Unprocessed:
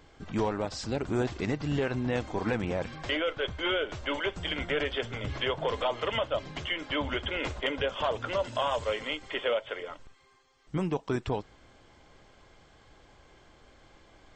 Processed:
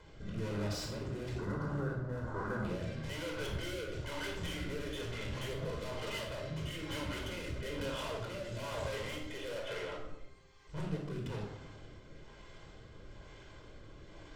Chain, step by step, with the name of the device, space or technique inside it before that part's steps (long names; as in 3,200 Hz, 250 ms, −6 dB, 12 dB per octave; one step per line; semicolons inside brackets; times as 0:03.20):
overdriven rotary cabinet (tube saturation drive 43 dB, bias 0.4; rotating-speaker cabinet horn 1.1 Hz)
0:01.38–0:02.65: high shelf with overshoot 1,900 Hz −9.5 dB, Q 3
rectangular room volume 2,100 cubic metres, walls furnished, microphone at 4.9 metres
level +1 dB